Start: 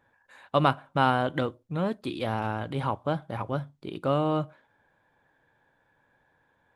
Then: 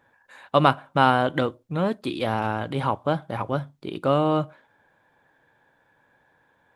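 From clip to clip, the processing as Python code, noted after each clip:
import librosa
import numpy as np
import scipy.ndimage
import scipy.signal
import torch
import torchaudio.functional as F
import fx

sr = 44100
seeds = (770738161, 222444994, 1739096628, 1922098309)

y = fx.low_shelf(x, sr, hz=91.0, db=-7.5)
y = F.gain(torch.from_numpy(y), 5.0).numpy()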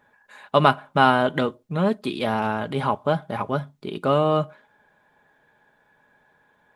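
y = x + 0.41 * np.pad(x, (int(4.8 * sr / 1000.0), 0))[:len(x)]
y = F.gain(torch.from_numpy(y), 1.0).numpy()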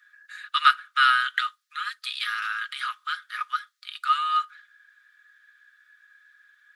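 y = scipy.signal.sosfilt(scipy.signal.cheby1(6, 6, 1200.0, 'highpass', fs=sr, output='sos'), x)
y = F.gain(torch.from_numpy(y), 7.5).numpy()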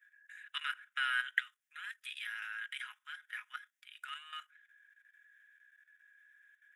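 y = fx.level_steps(x, sr, step_db=12)
y = fx.fixed_phaser(y, sr, hz=1200.0, stages=6)
y = F.gain(torch.from_numpy(y), -2.5).numpy()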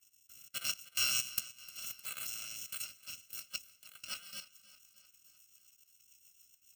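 y = fx.bit_reversed(x, sr, seeds[0], block=128)
y = fx.rotary_switch(y, sr, hz=0.85, then_hz=7.0, switch_at_s=2.45)
y = fx.echo_feedback(y, sr, ms=306, feedback_pct=58, wet_db=-18)
y = F.gain(torch.from_numpy(y), 4.0).numpy()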